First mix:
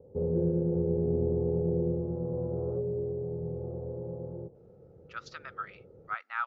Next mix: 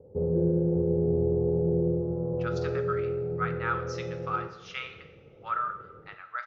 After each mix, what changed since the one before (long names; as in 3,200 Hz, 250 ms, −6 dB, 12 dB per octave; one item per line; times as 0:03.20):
speech: entry −2.70 s
reverb: on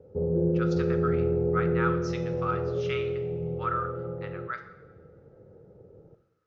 speech: entry −1.85 s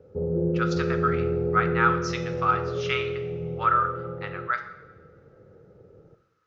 speech +8.5 dB